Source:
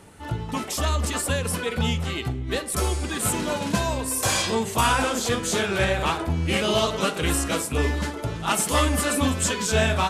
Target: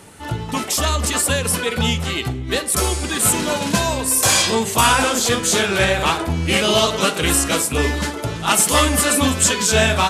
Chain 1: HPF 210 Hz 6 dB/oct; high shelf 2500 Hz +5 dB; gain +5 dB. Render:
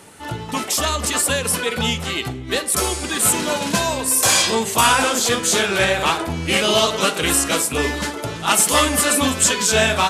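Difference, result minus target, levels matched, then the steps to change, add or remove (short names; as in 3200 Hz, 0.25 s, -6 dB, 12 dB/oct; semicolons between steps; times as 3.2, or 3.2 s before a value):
125 Hz band -5.0 dB
change: HPF 68 Hz 6 dB/oct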